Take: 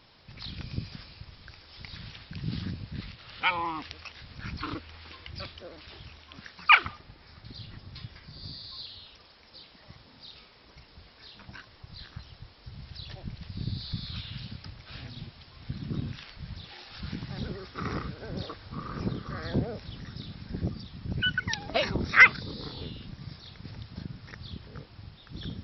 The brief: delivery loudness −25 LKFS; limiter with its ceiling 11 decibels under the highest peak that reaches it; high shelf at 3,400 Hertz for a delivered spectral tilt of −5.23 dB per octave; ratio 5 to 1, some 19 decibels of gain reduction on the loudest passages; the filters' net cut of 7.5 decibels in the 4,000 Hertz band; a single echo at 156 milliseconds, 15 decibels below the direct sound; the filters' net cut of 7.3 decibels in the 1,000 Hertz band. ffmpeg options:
ffmpeg -i in.wav -af "equalizer=frequency=1000:width_type=o:gain=-8.5,highshelf=frequency=3400:gain=-9,equalizer=frequency=4000:width_type=o:gain=-4,acompressor=threshold=-38dB:ratio=5,alimiter=level_in=10.5dB:limit=-24dB:level=0:latency=1,volume=-10.5dB,aecho=1:1:156:0.178,volume=22dB" out.wav

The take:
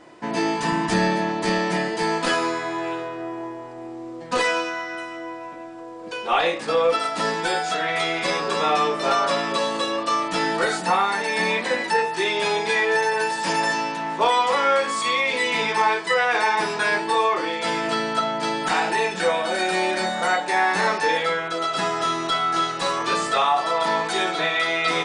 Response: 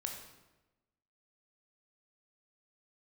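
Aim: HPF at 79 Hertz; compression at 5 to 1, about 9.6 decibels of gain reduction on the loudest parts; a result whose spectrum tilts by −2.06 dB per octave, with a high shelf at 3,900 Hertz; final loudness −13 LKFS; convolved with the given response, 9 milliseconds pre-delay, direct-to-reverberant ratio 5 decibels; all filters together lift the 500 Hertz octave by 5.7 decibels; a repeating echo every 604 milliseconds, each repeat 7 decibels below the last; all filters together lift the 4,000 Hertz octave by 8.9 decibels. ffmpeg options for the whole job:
-filter_complex "[0:a]highpass=79,equalizer=frequency=500:width_type=o:gain=6.5,highshelf=frequency=3900:gain=3,equalizer=frequency=4000:width_type=o:gain=9,acompressor=threshold=-21dB:ratio=5,aecho=1:1:604|1208|1812|2416|3020:0.447|0.201|0.0905|0.0407|0.0183,asplit=2[link_01][link_02];[1:a]atrim=start_sample=2205,adelay=9[link_03];[link_02][link_03]afir=irnorm=-1:irlink=0,volume=-4.5dB[link_04];[link_01][link_04]amix=inputs=2:normalize=0,volume=8dB"

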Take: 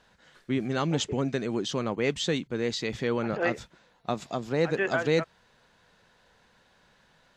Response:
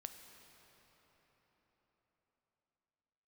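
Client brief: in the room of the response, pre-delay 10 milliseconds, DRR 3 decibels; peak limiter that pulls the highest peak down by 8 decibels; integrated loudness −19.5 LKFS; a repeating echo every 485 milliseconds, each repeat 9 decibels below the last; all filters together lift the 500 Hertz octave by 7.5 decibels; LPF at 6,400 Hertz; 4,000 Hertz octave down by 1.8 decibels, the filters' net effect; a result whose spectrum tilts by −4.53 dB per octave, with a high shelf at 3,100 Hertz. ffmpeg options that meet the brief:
-filter_complex "[0:a]lowpass=6400,equalizer=frequency=500:width_type=o:gain=8.5,highshelf=frequency=3100:gain=6.5,equalizer=frequency=4000:width_type=o:gain=-6.5,alimiter=limit=-15.5dB:level=0:latency=1,aecho=1:1:485|970|1455|1940:0.355|0.124|0.0435|0.0152,asplit=2[link_01][link_02];[1:a]atrim=start_sample=2205,adelay=10[link_03];[link_02][link_03]afir=irnorm=-1:irlink=0,volume=1.5dB[link_04];[link_01][link_04]amix=inputs=2:normalize=0,volume=6dB"

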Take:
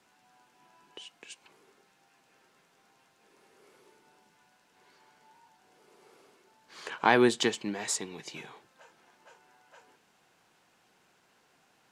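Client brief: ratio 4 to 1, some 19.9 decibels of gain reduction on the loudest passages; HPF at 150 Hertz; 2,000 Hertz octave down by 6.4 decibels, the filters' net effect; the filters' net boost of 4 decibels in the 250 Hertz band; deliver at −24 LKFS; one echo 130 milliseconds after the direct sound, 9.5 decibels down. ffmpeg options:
ffmpeg -i in.wav -af "highpass=150,equalizer=frequency=250:width_type=o:gain=6,equalizer=frequency=2000:width_type=o:gain=-8.5,acompressor=threshold=-40dB:ratio=4,aecho=1:1:130:0.335,volume=20.5dB" out.wav

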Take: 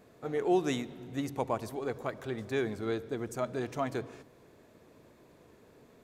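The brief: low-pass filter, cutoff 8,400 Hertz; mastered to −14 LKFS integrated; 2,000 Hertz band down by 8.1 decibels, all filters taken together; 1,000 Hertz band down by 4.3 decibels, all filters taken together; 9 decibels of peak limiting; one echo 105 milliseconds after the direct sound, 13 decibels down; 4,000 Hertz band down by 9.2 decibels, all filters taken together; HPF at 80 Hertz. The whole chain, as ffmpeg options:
ffmpeg -i in.wav -af "highpass=80,lowpass=8400,equalizer=frequency=1000:width_type=o:gain=-4.5,equalizer=frequency=2000:width_type=o:gain=-7,equalizer=frequency=4000:width_type=o:gain=-8.5,alimiter=level_in=2.5dB:limit=-24dB:level=0:latency=1,volume=-2.5dB,aecho=1:1:105:0.224,volume=24dB" out.wav

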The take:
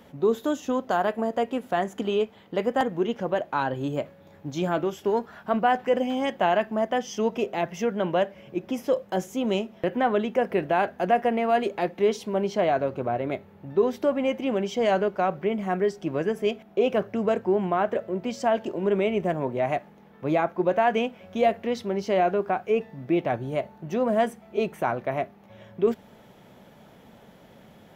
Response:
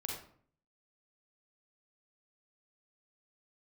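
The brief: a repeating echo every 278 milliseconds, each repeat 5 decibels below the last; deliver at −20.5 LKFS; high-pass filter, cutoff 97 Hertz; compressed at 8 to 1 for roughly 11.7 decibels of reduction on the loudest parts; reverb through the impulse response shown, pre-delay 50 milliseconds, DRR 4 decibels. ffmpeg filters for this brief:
-filter_complex "[0:a]highpass=97,acompressor=threshold=-29dB:ratio=8,aecho=1:1:278|556|834|1112|1390|1668|1946:0.562|0.315|0.176|0.0988|0.0553|0.031|0.0173,asplit=2[link_01][link_02];[1:a]atrim=start_sample=2205,adelay=50[link_03];[link_02][link_03]afir=irnorm=-1:irlink=0,volume=-4.5dB[link_04];[link_01][link_04]amix=inputs=2:normalize=0,volume=11dB"

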